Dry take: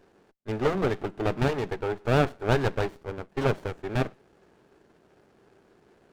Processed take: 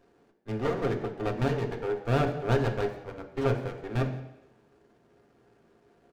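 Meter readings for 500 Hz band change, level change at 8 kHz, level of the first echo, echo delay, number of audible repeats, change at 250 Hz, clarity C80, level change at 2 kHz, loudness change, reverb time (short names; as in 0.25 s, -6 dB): -2.0 dB, n/a, -21.0 dB, 0.171 s, 1, -2.0 dB, 11.5 dB, -4.5 dB, -2.0 dB, 0.85 s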